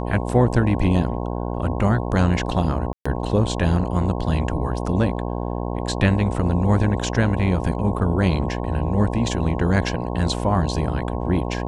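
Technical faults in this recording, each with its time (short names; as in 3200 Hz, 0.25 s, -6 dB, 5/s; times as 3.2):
buzz 60 Hz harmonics 18 -26 dBFS
2.93–3.06 gap 0.125 s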